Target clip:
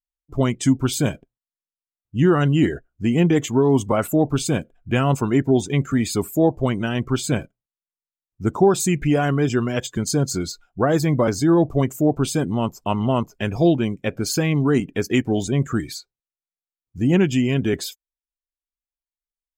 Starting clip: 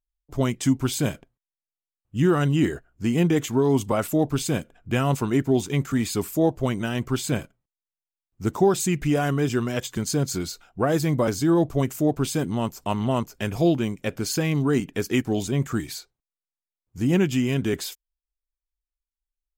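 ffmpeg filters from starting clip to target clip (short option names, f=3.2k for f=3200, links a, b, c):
-af "afftdn=nr=16:nf=-41,volume=3.5dB"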